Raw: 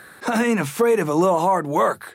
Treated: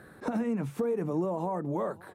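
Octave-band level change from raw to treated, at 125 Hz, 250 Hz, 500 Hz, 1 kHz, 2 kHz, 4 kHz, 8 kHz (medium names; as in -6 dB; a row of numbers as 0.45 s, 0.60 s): -6.5 dB, -8.5 dB, -12.0 dB, -16.5 dB, -20.0 dB, under -20 dB, under -20 dB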